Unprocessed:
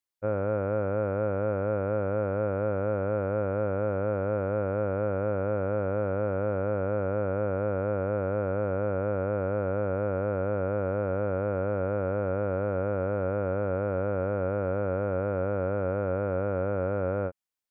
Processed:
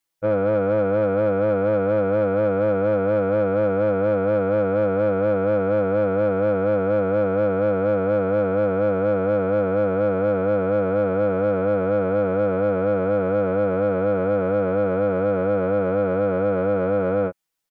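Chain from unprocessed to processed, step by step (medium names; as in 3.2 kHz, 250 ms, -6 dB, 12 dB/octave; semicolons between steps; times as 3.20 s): comb 6.1 ms, depth 88%; in parallel at -4 dB: saturation -26 dBFS, distortion -12 dB; on the sum: trim +3 dB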